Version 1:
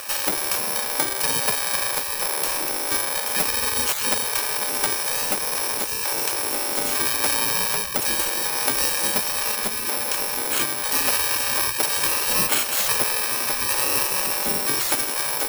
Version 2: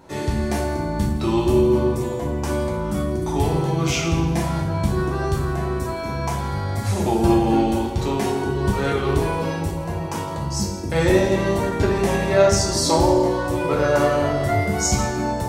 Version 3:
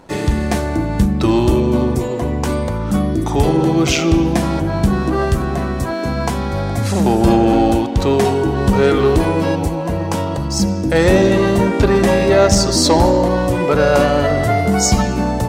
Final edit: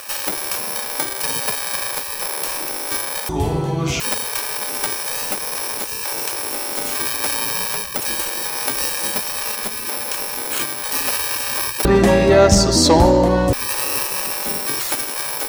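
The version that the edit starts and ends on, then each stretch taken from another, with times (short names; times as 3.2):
1
3.29–4 from 2
11.85–13.53 from 3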